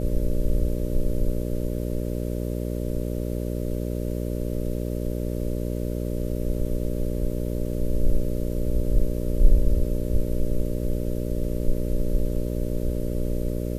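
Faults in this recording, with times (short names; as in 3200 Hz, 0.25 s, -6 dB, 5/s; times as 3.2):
buzz 60 Hz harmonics 10 -28 dBFS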